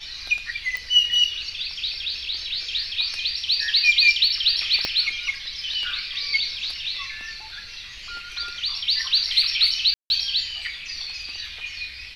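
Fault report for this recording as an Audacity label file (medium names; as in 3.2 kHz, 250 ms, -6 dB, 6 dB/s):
0.770000	0.770000	pop
4.850000	4.850000	pop -10 dBFS
9.940000	10.100000	dropout 161 ms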